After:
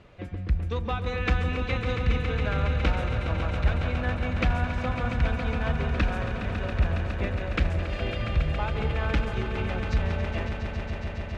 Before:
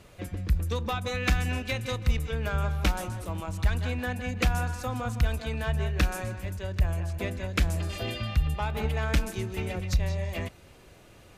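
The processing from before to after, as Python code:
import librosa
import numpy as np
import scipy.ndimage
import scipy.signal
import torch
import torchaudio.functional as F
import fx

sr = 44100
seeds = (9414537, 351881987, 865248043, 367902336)

y = scipy.signal.sosfilt(scipy.signal.butter(2, 3100.0, 'lowpass', fs=sr, output='sos'), x)
y = fx.echo_swell(y, sr, ms=138, loudest=5, wet_db=-10.0)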